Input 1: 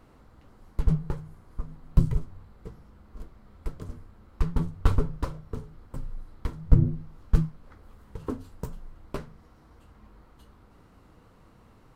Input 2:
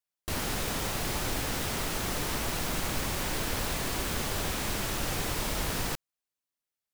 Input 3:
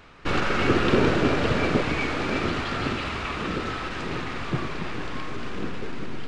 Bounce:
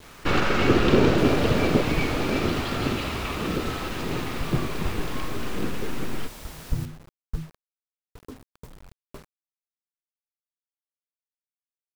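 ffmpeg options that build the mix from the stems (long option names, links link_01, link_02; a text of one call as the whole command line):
ffmpeg -i stem1.wav -i stem2.wav -i stem3.wav -filter_complex "[0:a]volume=-9.5dB[link_01];[1:a]adelay=900,volume=-11dB[link_02];[2:a]volume=2.5dB[link_03];[link_01][link_02][link_03]amix=inputs=3:normalize=0,adynamicequalizer=threshold=0.0126:dfrequency=1600:dqfactor=0.96:tfrequency=1600:tqfactor=0.96:attack=5:release=100:ratio=0.375:range=3:mode=cutabove:tftype=bell,acrusher=bits=7:mix=0:aa=0.000001" out.wav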